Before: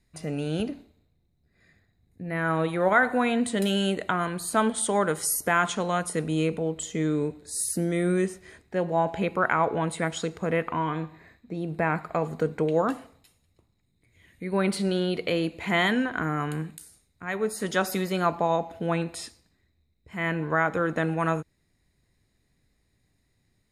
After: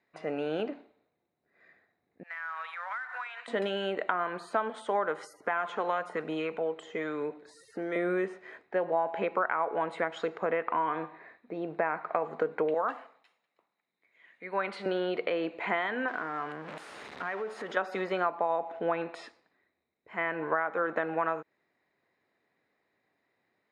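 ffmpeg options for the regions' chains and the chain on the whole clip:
ffmpeg -i in.wav -filter_complex "[0:a]asettb=1/sr,asplit=3[link_01][link_02][link_03];[link_01]atrim=end=2.234[link_04];[link_02]atrim=start=2.23:end=3.48,asetpts=PTS-STARTPTS,afade=type=in:duration=0.004:curve=qsin,afade=type=out:start_time=1.246:duration=0.004:curve=qsin,highpass=frequency=1200:width=0.5412,highpass=frequency=1200:width=1.3066,acompressor=threshold=-37dB:ratio=12:attack=3.2:release=140:knee=1:detection=peak,acrusher=bits=3:mode=log:mix=0:aa=0.000001[link_05];[link_03]atrim=start=3.476[link_06];[link_04][link_05]acrossfade=duration=0.004:curve1=hsin:curve2=qsin[link_07];[link_07][link_06]acrossfade=duration=0.004:curve1=qsin:curve2=hsin,asettb=1/sr,asplit=3[link_08][link_09][link_10];[link_08]atrim=end=5.334[link_11];[link_09]atrim=start=5.33:end=7.96,asetpts=PTS-STARTPTS,afade=type=in:duration=0.004:curve=qsin,afade=type=out:start_time=2.626:duration=0.004:curve=qsin,acrossover=split=810|2300[link_12][link_13][link_14];[link_12]acompressor=threshold=-30dB:ratio=4[link_15];[link_13]acompressor=threshold=-31dB:ratio=4[link_16];[link_14]acompressor=threshold=-39dB:ratio=4[link_17];[link_15][link_16][link_17]amix=inputs=3:normalize=0,aphaser=in_gain=1:out_gain=1:delay=2.7:decay=0.26:speed=1:type=triangular[link_18];[link_10]atrim=start=7.956[link_19];[link_11][link_18]acrossfade=duration=0.004:curve1=hsin:curve2=qsin[link_20];[link_20][link_19]acrossfade=duration=0.004:curve1=qsin:curve2=hsin,asettb=1/sr,asplit=3[link_21][link_22][link_23];[link_21]atrim=end=12.744[link_24];[link_22]atrim=start=12.74:end=14.86,asetpts=PTS-STARTPTS,afade=type=in:duration=0.004:curve=qsin,afade=type=out:start_time=2.116:duration=0.004:curve=qsin,highpass=frequency=170:width=0.5412,highpass=frequency=170:width=1.3066,equalizer=frequency=320:width_type=o:width=2:gain=-9.5[link_25];[link_23]atrim=start=14.856[link_26];[link_24][link_25]acrossfade=duration=0.004:curve1=hsin:curve2=qsin[link_27];[link_27][link_26]acrossfade=duration=0.004:curve1=qsin:curve2=hsin,asettb=1/sr,asplit=3[link_28][link_29][link_30];[link_28]atrim=end=16.084[link_31];[link_29]atrim=start=16.08:end=17.77,asetpts=PTS-STARTPTS,afade=type=in:duration=0.004:curve=qsin,afade=type=out:start_time=1.686:duration=0.004:curve=qsin,aeval=exprs='val(0)+0.5*0.0251*sgn(val(0))':channel_layout=same,acompressor=threshold=-33dB:ratio=5:attack=3.2:release=140:knee=1:detection=peak[link_32];[link_30]atrim=start=17.766[link_33];[link_31][link_32]acrossfade=duration=0.004:curve1=hsin:curve2=qsin[link_34];[link_34][link_33]acrossfade=duration=0.004:curve1=qsin:curve2=hsin,highpass=510,acompressor=threshold=-30dB:ratio=6,lowpass=1800,volume=5.5dB" out.wav

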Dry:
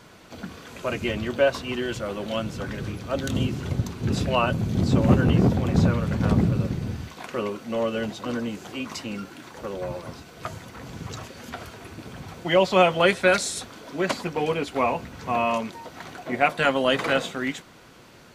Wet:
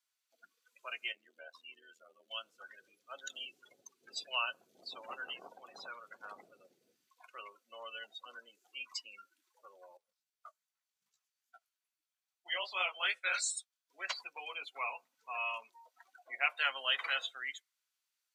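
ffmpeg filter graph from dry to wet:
ffmpeg -i in.wav -filter_complex "[0:a]asettb=1/sr,asplit=3[link_01][link_02][link_03];[link_01]atrim=end=1.124[link_04];[link_02]atrim=start=1.12:end=2.31,asetpts=PTS-STARTPTS,afade=type=in:duration=0.004:curve=qsin,afade=type=out:start_time=1.186:duration=0.004:curve=qsin,lowshelf=frequency=160:width_type=q:width=3:gain=-8,acompressor=threshold=-29dB:ratio=2:attack=3.2:release=140:knee=1:detection=peak,tremolo=f=81:d=0.788[link_05];[link_03]atrim=start=2.306[link_06];[link_04][link_05]acrossfade=duration=0.004:curve1=hsin:curve2=qsin[link_07];[link_07][link_06]acrossfade=duration=0.004:curve1=qsin:curve2=hsin,asettb=1/sr,asplit=3[link_08][link_09][link_10];[link_08]atrim=end=9.974[link_11];[link_09]atrim=start=9.97:end=13.9,asetpts=PTS-STARTPTS,afade=type=in:duration=0.004:curve=qsin,afade=type=out:start_time=3.926:duration=0.004:curve=qsin,agate=range=-9dB:threshold=-35dB:ratio=16:release=100:detection=peak,flanger=delay=15.5:depth=7.8:speed=2.5[link_12];[link_10]atrim=start=13.896[link_13];[link_11][link_12]acrossfade=duration=0.004:curve1=hsin:curve2=qsin[link_14];[link_14][link_13]acrossfade=duration=0.004:curve1=qsin:curve2=hsin,afftdn=noise_reduction=31:noise_floor=-31,highpass=830,aderivative,volume=4dB" out.wav

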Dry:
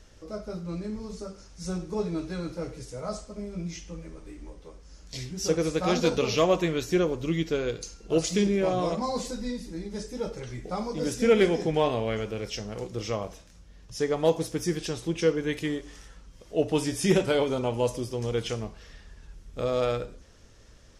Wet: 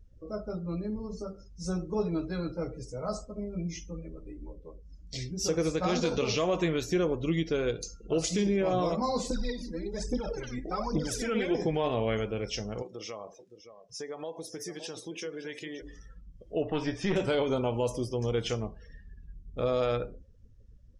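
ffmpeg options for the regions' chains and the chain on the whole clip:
ffmpeg -i in.wav -filter_complex "[0:a]asettb=1/sr,asplit=3[link_01][link_02][link_03];[link_01]atrim=end=9.304[link_04];[link_02]atrim=start=9.3:end=11.55,asetpts=PTS-STARTPTS,afade=type=in:duration=0.004:curve=qsin,afade=type=out:start_time=2.246:duration=0.004:curve=qsin,acompressor=threshold=-29dB:ratio=3:attack=3.2:release=140:knee=1:detection=peak,aphaser=in_gain=1:out_gain=1:delay=4.4:decay=0.74:speed=1.2:type=triangular[link_05];[link_03]atrim=start=11.546[link_06];[link_04][link_05]acrossfade=duration=0.004:curve1=hsin:curve2=qsin[link_07];[link_07][link_06]acrossfade=duration=0.004:curve1=qsin:curve2=hsin,asettb=1/sr,asplit=3[link_08][link_09][link_10];[link_08]atrim=end=12.824[link_11];[link_09]atrim=start=12.82:end=15.82,asetpts=PTS-STARTPTS,afade=type=in:duration=0.004:curve=qsin,afade=type=out:start_time=2.996:duration=0.004:curve=qsin,highpass=frequency=530:poles=1,acompressor=threshold=-36dB:ratio=4:attack=3.2:release=140:knee=1:detection=peak,aecho=1:1:567:0.316,atrim=end_sample=132300[link_12];[link_10]atrim=start=15.816[link_13];[link_11][link_12]acrossfade=duration=0.004:curve1=hsin:curve2=qsin[link_14];[link_14][link_13]acrossfade=duration=0.004:curve1=qsin:curve2=hsin,asettb=1/sr,asplit=3[link_15][link_16][link_17];[link_15]atrim=end=16.634[link_18];[link_16]atrim=start=16.63:end=17.16,asetpts=PTS-STARTPTS,afade=type=in:duration=0.004:curve=qsin,afade=type=out:start_time=0.526:duration=0.004:curve=qsin,lowpass=4400,equalizer=frequency=1300:width=0.62:gain=6,aeval=exprs='(tanh(6.31*val(0)+0.6)-tanh(0.6))/6.31':channel_layout=same[link_19];[link_17]atrim=start=17.156[link_20];[link_18][link_19]acrossfade=duration=0.004:curve1=hsin:curve2=qsin[link_21];[link_21][link_20]acrossfade=duration=0.004:curve1=qsin:curve2=hsin,afftdn=noise_reduction=26:noise_floor=-48,alimiter=limit=-19dB:level=0:latency=1:release=69" out.wav

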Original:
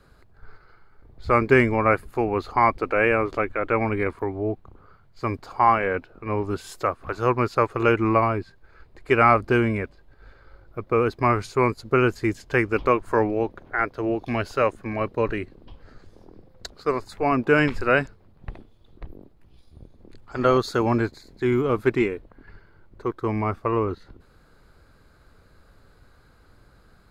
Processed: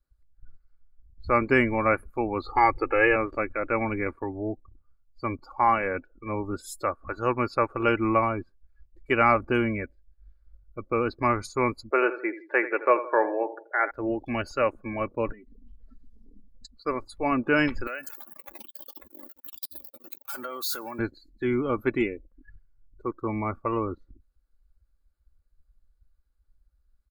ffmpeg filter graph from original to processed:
ffmpeg -i in.wav -filter_complex "[0:a]asettb=1/sr,asplit=3[link_01][link_02][link_03];[link_01]atrim=end=2.454[link_04];[link_02]atrim=start=2.45:end=3.16,asetpts=PTS-STARTPTS,afade=type=in:duration=0.004:curve=qsin,afade=type=out:start_time=0.706:duration=0.004:curve=qsin,bandreject=frequency=60:width_type=h:width=6,bandreject=frequency=120:width_type=h:width=6,bandreject=frequency=180:width_type=h:width=6,aecho=1:1:2.4:0.88,atrim=end_sample=31311[link_05];[link_03]atrim=start=3.156[link_06];[link_04][link_05]acrossfade=duration=0.004:curve1=hsin:curve2=qsin[link_07];[link_07][link_06]acrossfade=duration=0.004:curve1=qsin:curve2=hsin,asettb=1/sr,asplit=3[link_08][link_09][link_10];[link_08]atrim=end=11.914[link_11];[link_09]atrim=start=11.91:end=13.91,asetpts=PTS-STARTPTS,afade=type=in:duration=0.004:curve=qsin,afade=type=out:start_time=1.996:duration=0.004:curve=qsin,highpass=frequency=370:width=0.5412,highpass=frequency=370:width=1.3066,equalizer=frequency=390:width_type=q:width=4:gain=3,equalizer=frequency=620:width_type=q:width=4:gain=7,equalizer=frequency=930:width_type=q:width=4:gain=4,equalizer=frequency=1700:width_type=q:width=4:gain=4,equalizer=frequency=3100:width_type=q:width=4:gain=-7,lowpass=frequency=3700:width=0.5412,lowpass=frequency=3700:width=1.3066,aecho=1:1:82|164|246|328:0.224|0.0985|0.0433|0.0191,atrim=end_sample=88200[link_12];[link_10]atrim=start=13.906[link_13];[link_11][link_12]acrossfade=duration=0.004:curve1=hsin:curve2=qsin[link_14];[link_14][link_13]acrossfade=duration=0.004:curve1=qsin:curve2=hsin,asettb=1/sr,asplit=3[link_15][link_16][link_17];[link_15]atrim=end=15.324[link_18];[link_16]atrim=start=15.32:end=16.77,asetpts=PTS-STARTPTS,afade=type=in:duration=0.004:curve=qsin,afade=type=out:start_time=1.446:duration=0.004:curve=qsin,aecho=1:1:4.5:0.87,atrim=end_sample=63945,acompressor=threshold=-39dB:ratio=10:attack=3.2:release=140:knee=1:detection=peak[link_19];[link_17]atrim=start=16.766[link_20];[link_18][link_19]acrossfade=duration=0.004:curve1=hsin:curve2=qsin[link_21];[link_21][link_20]acrossfade=duration=0.004:curve1=qsin:curve2=hsin,asettb=1/sr,asplit=3[link_22][link_23][link_24];[link_22]atrim=end=17.874[link_25];[link_23]atrim=start=17.87:end=20.99,asetpts=PTS-STARTPTS,afade=type=in:duration=0.004:curve=qsin,afade=type=out:start_time=3.116:duration=0.004:curve=qsin,aeval=exprs='val(0)+0.5*0.0447*sgn(val(0))':channel_layout=same,highpass=frequency=850:poles=1,acompressor=threshold=-32dB:ratio=2.5:attack=3.2:release=140:knee=1:detection=peak[link_26];[link_24]atrim=start=20.986[link_27];[link_25][link_26]acrossfade=duration=0.004:curve1=hsin:curve2=qsin[link_28];[link_28][link_27]acrossfade=duration=0.004:curve1=qsin:curve2=hsin,aemphasis=mode=production:type=50fm,aecho=1:1:3.5:0.35,afftdn=noise_reduction=29:noise_floor=-36,volume=-4dB" out.wav

